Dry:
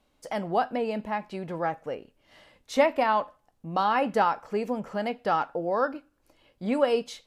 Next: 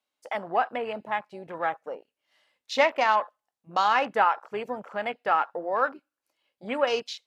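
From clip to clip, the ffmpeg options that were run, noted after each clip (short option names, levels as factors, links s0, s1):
-af "highpass=f=1400:p=1,afwtdn=0.00631,volume=2.24"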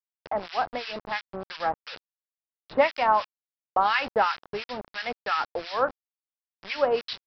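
-filter_complex "[0:a]aresample=11025,acrusher=bits=5:mix=0:aa=0.000001,aresample=44100,acrossover=split=1300[s0][s1];[s0]aeval=exprs='val(0)*(1-1/2+1/2*cos(2*PI*2.9*n/s))':c=same[s2];[s1]aeval=exprs='val(0)*(1-1/2-1/2*cos(2*PI*2.9*n/s))':c=same[s3];[s2][s3]amix=inputs=2:normalize=0,volume=1.68"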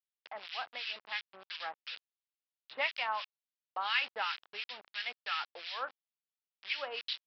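-af "bandpass=f=3100:t=q:w=1.7:csg=0"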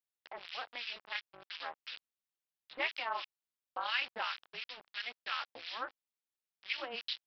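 -af "tremolo=f=240:d=0.824,volume=1.19"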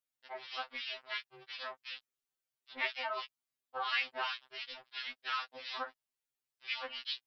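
-af "afftfilt=real='re*2.45*eq(mod(b,6),0)':imag='im*2.45*eq(mod(b,6),0)':win_size=2048:overlap=0.75,volume=1.41"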